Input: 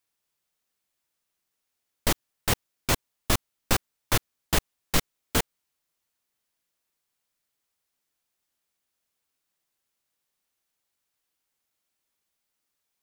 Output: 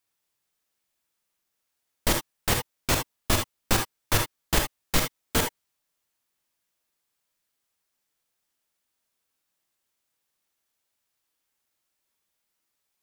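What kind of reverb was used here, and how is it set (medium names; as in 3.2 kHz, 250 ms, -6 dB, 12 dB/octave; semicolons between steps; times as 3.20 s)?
gated-style reverb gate 90 ms rising, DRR 3.5 dB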